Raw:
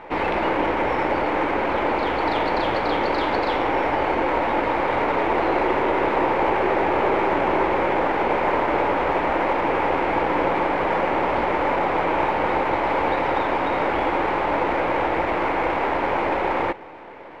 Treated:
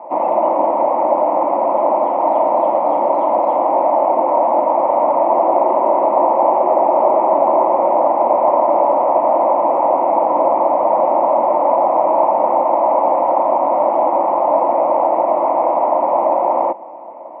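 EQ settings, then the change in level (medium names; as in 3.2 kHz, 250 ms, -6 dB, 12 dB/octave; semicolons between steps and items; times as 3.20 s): cabinet simulation 190–2100 Hz, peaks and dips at 210 Hz +4 dB, 380 Hz +4 dB, 630 Hz +6 dB, 1 kHz +8 dB; peaking EQ 590 Hz +13.5 dB 1.6 oct; static phaser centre 430 Hz, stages 6; -5.0 dB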